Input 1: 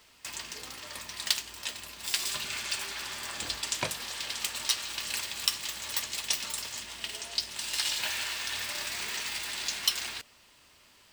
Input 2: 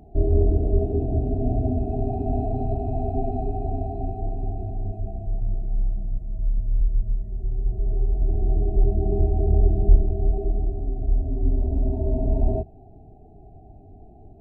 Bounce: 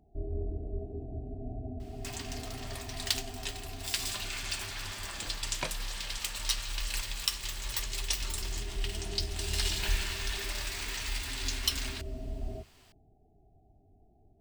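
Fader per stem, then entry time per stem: -3.0, -16.5 dB; 1.80, 0.00 s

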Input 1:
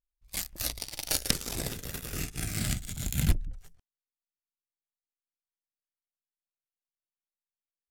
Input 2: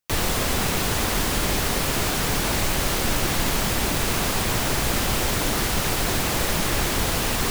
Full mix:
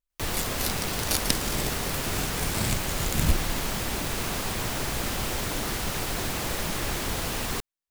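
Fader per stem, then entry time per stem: +1.5, -6.5 dB; 0.00, 0.10 s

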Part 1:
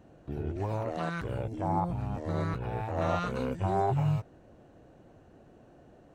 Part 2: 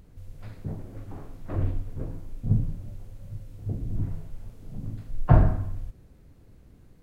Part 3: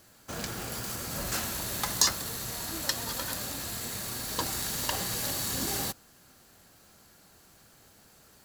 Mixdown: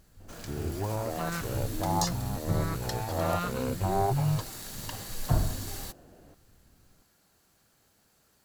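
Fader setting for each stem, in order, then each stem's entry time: +0.5, -9.0, -9.0 dB; 0.20, 0.00, 0.00 s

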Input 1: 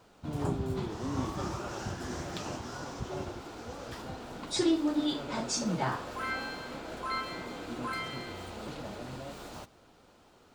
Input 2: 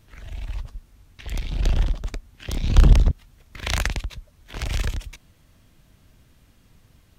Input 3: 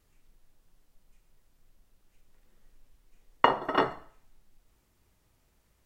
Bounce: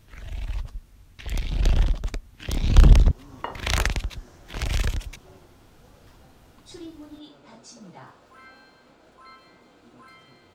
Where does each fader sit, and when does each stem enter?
-14.0, +0.5, -11.5 dB; 2.15, 0.00, 0.00 s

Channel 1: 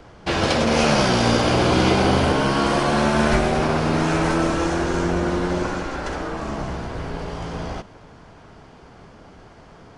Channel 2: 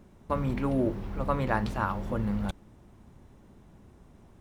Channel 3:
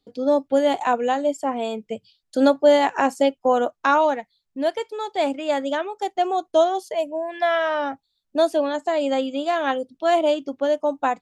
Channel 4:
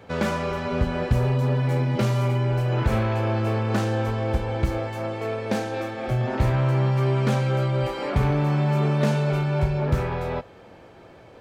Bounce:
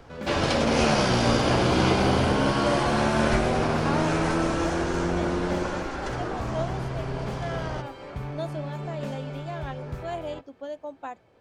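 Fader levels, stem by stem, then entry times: -4.5, -5.0, -15.0, -13.0 dB; 0.00, 0.00, 0.00, 0.00 s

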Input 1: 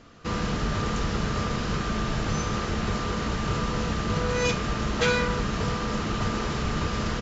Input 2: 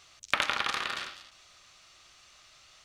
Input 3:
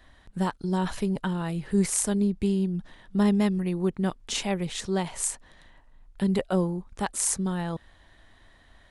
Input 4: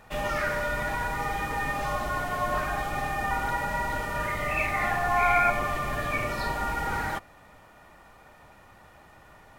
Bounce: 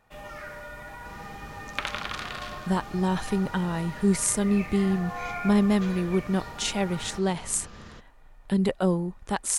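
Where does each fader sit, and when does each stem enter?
-18.0, -4.0, +1.0, -12.0 dB; 0.80, 1.45, 2.30, 0.00 s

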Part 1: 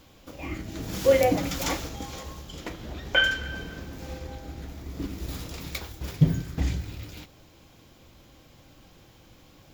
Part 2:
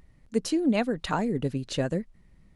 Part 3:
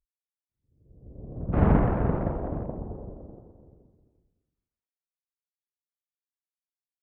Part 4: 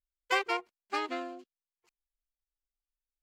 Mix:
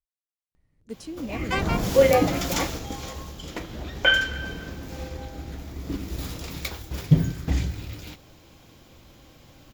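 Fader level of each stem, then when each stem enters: +2.5, -11.0, -7.0, +1.0 dB; 0.90, 0.55, 0.00, 1.20 s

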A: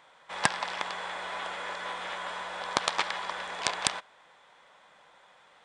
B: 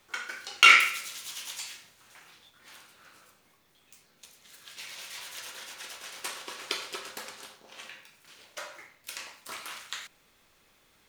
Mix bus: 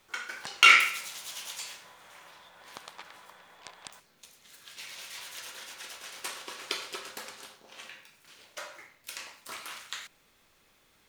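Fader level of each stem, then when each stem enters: -18.5, -1.0 dB; 0.00, 0.00 s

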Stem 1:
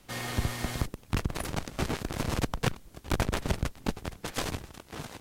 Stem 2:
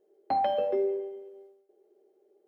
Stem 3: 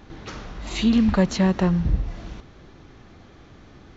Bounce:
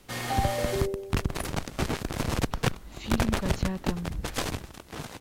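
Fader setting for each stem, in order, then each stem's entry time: +2.0, -3.0, -13.5 dB; 0.00, 0.00, 2.25 s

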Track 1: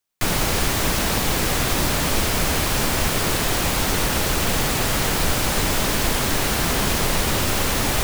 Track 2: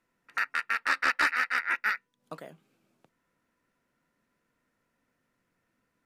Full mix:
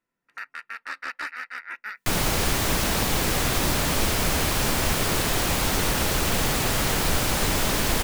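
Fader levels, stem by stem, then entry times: -2.5, -7.5 dB; 1.85, 0.00 s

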